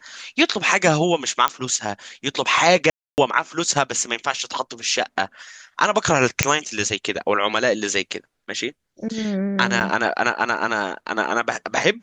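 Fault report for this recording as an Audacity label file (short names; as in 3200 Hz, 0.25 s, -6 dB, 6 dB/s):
1.480000	1.480000	pop -5 dBFS
2.900000	3.180000	gap 0.279 s
6.430000	6.430000	pop
9.800000	9.810000	gap 8.2 ms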